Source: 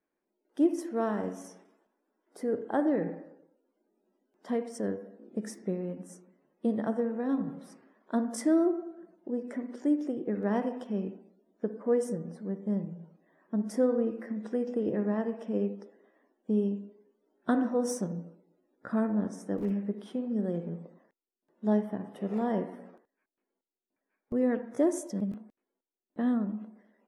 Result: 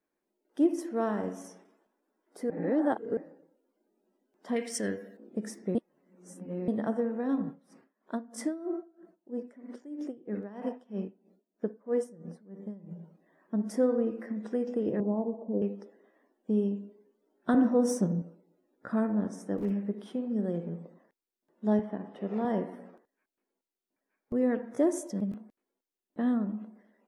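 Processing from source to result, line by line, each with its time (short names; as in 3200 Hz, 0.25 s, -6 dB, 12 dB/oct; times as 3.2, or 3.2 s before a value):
2.5–3.17 reverse
4.56–5.17 resonant high shelf 1500 Hz +11.5 dB, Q 1.5
5.75–6.68 reverse
7.46–12.91 dB-linear tremolo 3.1 Hz, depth 19 dB
15–15.62 steep low-pass 1000 Hz 48 dB/oct
17.54–18.22 low shelf 390 Hz +7.5 dB
21.79–22.45 BPF 170–4600 Hz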